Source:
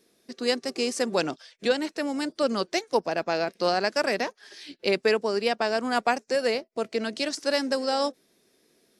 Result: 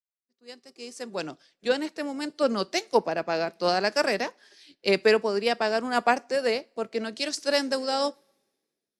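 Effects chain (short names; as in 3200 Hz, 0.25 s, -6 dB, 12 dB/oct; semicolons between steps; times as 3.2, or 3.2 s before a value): opening faded in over 1.99 s; two-slope reverb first 0.31 s, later 1.9 s, from -22 dB, DRR 18.5 dB; three-band expander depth 70%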